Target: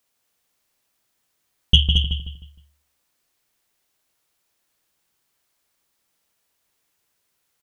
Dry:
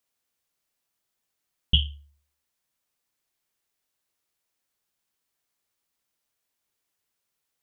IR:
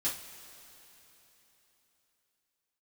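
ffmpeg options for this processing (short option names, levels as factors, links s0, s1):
-filter_complex "[0:a]asplit=2[s0][s1];[s1]adelay=155,lowpass=f=3000:p=1,volume=0.501,asplit=2[s2][s3];[s3]adelay=155,lowpass=f=3000:p=1,volume=0.37,asplit=2[s4][s5];[s5]adelay=155,lowpass=f=3000:p=1,volume=0.37,asplit=2[s6][s7];[s7]adelay=155,lowpass=f=3000:p=1,volume=0.37[s8];[s2][s4][s6][s8]amix=inputs=4:normalize=0[s9];[s0][s9]amix=inputs=2:normalize=0,acontrast=24,asplit=2[s10][s11];[s11]aecho=0:1:222:0.473[s12];[s10][s12]amix=inputs=2:normalize=0,volume=1.33"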